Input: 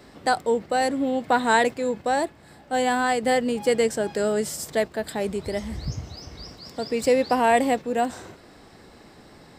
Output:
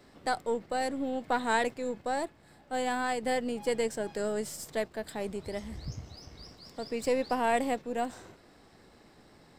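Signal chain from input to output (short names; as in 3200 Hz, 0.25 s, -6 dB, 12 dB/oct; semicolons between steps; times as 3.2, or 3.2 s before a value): half-wave gain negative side -3 dB; gain -7.5 dB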